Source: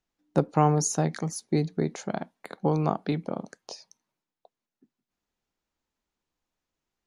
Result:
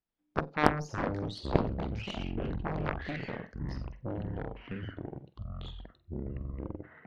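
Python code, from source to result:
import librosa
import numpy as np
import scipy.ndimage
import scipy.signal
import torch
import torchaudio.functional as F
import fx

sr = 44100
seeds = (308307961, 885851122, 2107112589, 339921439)

y = fx.peak_eq(x, sr, hz=5100.0, db=9.5, octaves=0.34)
y = fx.echo_pitch(y, sr, ms=85, semitones=-7, count=3, db_per_echo=-3.0)
y = fx.air_absorb(y, sr, metres=290.0)
y = fx.room_flutter(y, sr, wall_m=8.0, rt60_s=0.23)
y = fx.cheby_harmonics(y, sr, harmonics=(3, 5, 7, 8), levels_db=(-8, -27, -24, -27), full_scale_db=-5.5)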